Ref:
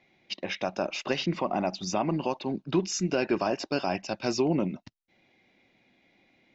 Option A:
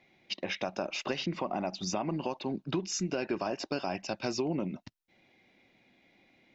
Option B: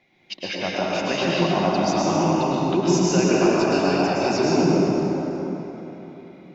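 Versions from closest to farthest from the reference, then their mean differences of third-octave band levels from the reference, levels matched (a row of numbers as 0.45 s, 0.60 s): A, B; 1.5 dB, 8.5 dB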